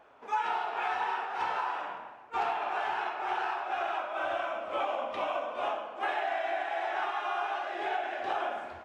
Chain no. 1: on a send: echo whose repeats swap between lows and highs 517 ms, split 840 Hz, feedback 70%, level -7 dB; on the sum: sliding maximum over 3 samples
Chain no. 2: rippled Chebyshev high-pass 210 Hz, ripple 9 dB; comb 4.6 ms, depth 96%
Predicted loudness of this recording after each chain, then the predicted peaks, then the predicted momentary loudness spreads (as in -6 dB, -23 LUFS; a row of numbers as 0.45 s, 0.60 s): -32.5 LUFS, -32.5 LUFS; -19.0 dBFS, -17.0 dBFS; 2 LU, 4 LU